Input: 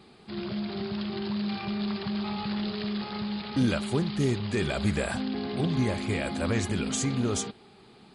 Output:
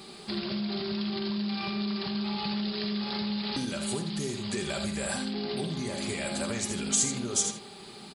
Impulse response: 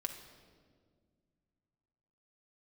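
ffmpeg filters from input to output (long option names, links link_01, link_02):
-filter_complex "[1:a]atrim=start_sample=2205,atrim=end_sample=3969[link_01];[0:a][link_01]afir=irnorm=-1:irlink=0,acompressor=threshold=-36dB:ratio=10,bass=frequency=250:gain=-4,treble=frequency=4000:gain=12,aecho=1:1:82:0.355,volume=7dB"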